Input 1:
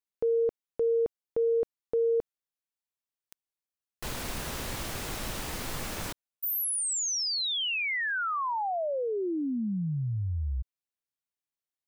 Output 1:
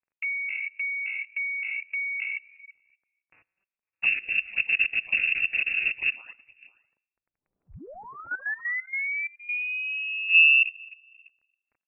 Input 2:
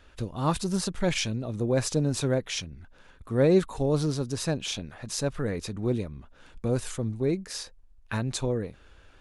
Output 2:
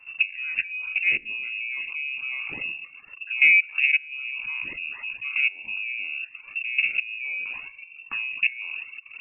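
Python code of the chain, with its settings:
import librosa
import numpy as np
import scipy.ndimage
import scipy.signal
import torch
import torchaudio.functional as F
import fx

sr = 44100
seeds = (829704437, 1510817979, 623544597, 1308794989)

p1 = fx.spec_trails(x, sr, decay_s=0.96)
p2 = fx.over_compress(p1, sr, threshold_db=-31.0, ratio=-0.5)
p3 = p1 + (p2 * librosa.db_to_amplitude(-3.0))
p4 = fx.tilt_eq(p3, sr, slope=-4.0)
p5 = fx.env_flanger(p4, sr, rest_ms=5.2, full_db=-9.0)
p6 = p5 + fx.echo_single(p5, sr, ms=505, db=-21.0, dry=0)
p7 = fx.dmg_crackle(p6, sr, seeds[0], per_s=12.0, level_db=-45.0)
p8 = fx.low_shelf(p7, sr, hz=290.0, db=-3.0)
p9 = fx.level_steps(p8, sr, step_db=14)
p10 = scipy.signal.sosfilt(scipy.signal.butter(2, 53.0, 'highpass', fs=sr, output='sos'), p9)
p11 = fx.freq_invert(p10, sr, carrier_hz=2700)
y = fx.dereverb_blind(p11, sr, rt60_s=0.86)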